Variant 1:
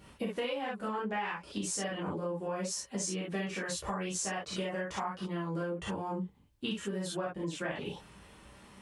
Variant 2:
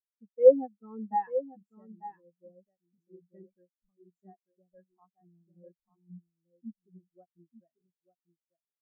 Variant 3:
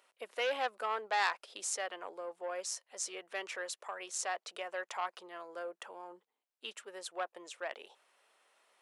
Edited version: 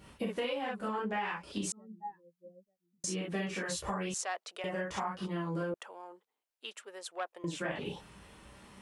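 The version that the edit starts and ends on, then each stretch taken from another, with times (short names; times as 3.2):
1
1.72–3.04 from 2
4.14–4.64 from 3
5.74–7.44 from 3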